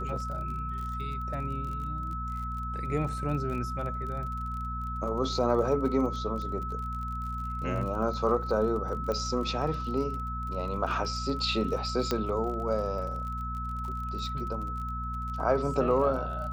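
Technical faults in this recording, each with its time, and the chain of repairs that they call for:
surface crackle 39 per second −37 dBFS
mains hum 60 Hz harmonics 4 −36 dBFS
whistle 1,300 Hz −35 dBFS
0:09.12: click −20 dBFS
0:12.11: click −13 dBFS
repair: click removal
hum removal 60 Hz, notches 4
notch filter 1,300 Hz, Q 30

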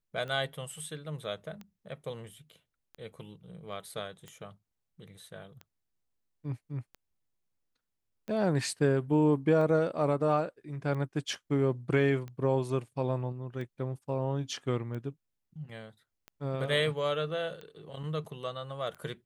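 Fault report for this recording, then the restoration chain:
scratch tick 45 rpm −30 dBFS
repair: click removal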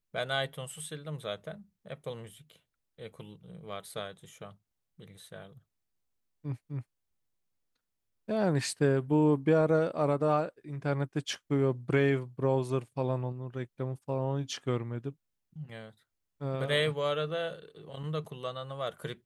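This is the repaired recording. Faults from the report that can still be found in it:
none of them is left

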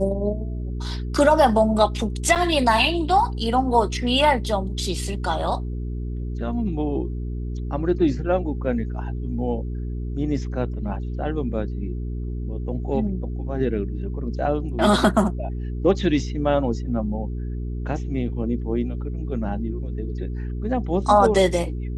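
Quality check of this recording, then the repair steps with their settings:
mains hum 60 Hz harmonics 7 −28 dBFS
0:02.35–0:02.36: drop-out 7.1 ms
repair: hum removal 60 Hz, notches 7
repair the gap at 0:02.35, 7.1 ms

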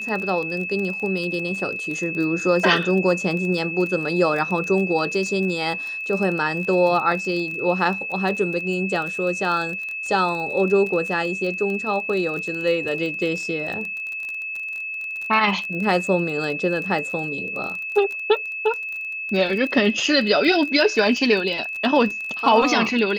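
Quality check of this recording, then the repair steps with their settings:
surface crackle 23 per second −27 dBFS
whistle 2,600 Hz −27 dBFS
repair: click removal
notch filter 2,600 Hz, Q 30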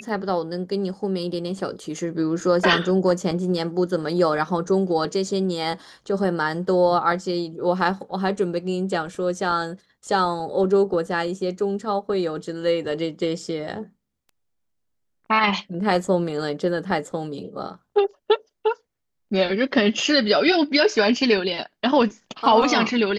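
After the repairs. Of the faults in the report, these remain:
none of them is left

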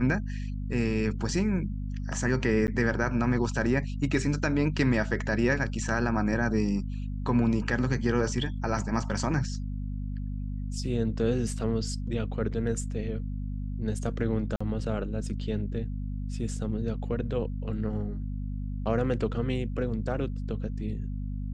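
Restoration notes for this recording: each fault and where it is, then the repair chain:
mains hum 50 Hz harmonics 5 −33 dBFS
0:02.67–0:02.68: drop-out 9.8 ms
0:14.56–0:14.61: drop-out 45 ms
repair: hum removal 50 Hz, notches 5
repair the gap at 0:02.67, 9.8 ms
repair the gap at 0:14.56, 45 ms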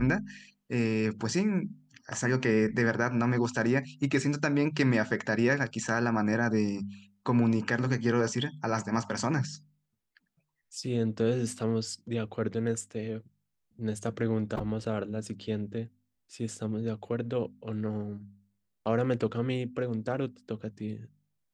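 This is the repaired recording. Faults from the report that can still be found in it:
none of them is left

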